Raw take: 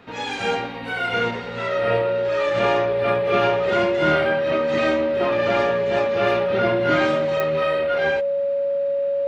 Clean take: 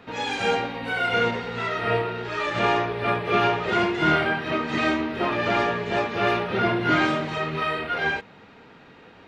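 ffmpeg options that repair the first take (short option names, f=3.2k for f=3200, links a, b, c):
-af "adeclick=t=4,bandreject=f=560:w=30"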